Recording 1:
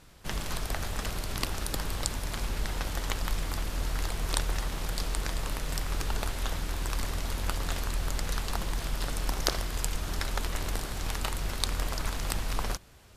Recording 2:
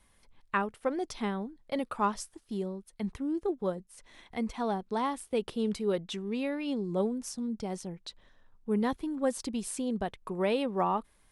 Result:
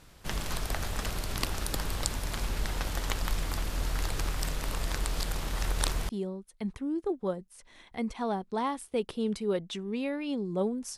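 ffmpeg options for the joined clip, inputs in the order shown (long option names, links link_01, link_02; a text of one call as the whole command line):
ffmpeg -i cue0.wav -i cue1.wav -filter_complex "[0:a]apad=whole_dur=10.97,atrim=end=10.97,asplit=2[link_01][link_02];[link_01]atrim=end=4.122[link_03];[link_02]atrim=start=4.118:end=6.092,asetpts=PTS-STARTPTS,areverse[link_04];[1:a]atrim=start=2.478:end=7.36[link_05];[link_03][link_04]acrossfade=duration=0.004:curve1=hsin:curve2=hsin[link_06];[link_06][link_05]acrossfade=duration=0.004:curve1=hsin:curve2=hsin" out.wav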